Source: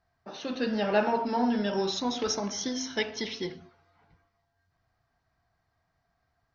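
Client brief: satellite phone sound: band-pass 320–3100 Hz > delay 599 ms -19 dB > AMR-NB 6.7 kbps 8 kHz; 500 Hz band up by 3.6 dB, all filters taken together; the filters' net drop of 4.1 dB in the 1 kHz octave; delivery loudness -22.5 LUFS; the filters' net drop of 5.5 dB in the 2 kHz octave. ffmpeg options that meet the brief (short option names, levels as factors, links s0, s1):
-af "highpass=320,lowpass=3100,equalizer=f=500:t=o:g=8,equalizer=f=1000:t=o:g=-8,equalizer=f=2000:t=o:g=-4,aecho=1:1:599:0.112,volume=2.66" -ar 8000 -c:a libopencore_amrnb -b:a 6700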